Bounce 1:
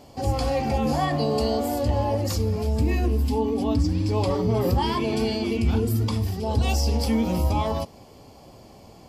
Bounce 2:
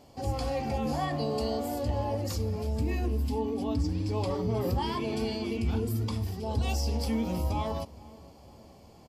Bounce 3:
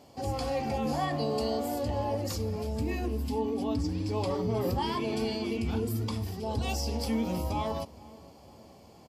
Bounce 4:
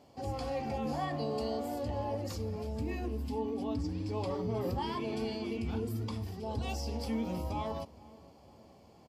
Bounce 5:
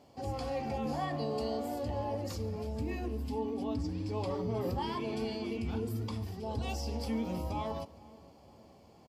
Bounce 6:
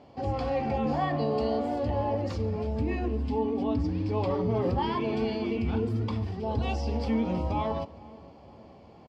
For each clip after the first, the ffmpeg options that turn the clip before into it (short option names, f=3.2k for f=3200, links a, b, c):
-filter_complex "[0:a]asplit=2[a][b];[b]adelay=467,lowpass=f=2k:p=1,volume=-21dB,asplit=2[c][d];[d]adelay=467,lowpass=f=2k:p=1,volume=0.52,asplit=2[e][f];[f]adelay=467,lowpass=f=2k:p=1,volume=0.52,asplit=2[g][h];[h]adelay=467,lowpass=f=2k:p=1,volume=0.52[i];[a][c][e][g][i]amix=inputs=5:normalize=0,volume=-7dB"
-af "highpass=f=110:p=1,volume=1dB"
-af "highshelf=f=5.3k:g=-6.5,volume=-4.5dB"
-filter_complex "[0:a]asplit=2[a][b];[b]adelay=139.9,volume=-21dB,highshelf=f=4k:g=-3.15[c];[a][c]amix=inputs=2:normalize=0"
-af "lowpass=3.3k,volume=7dB"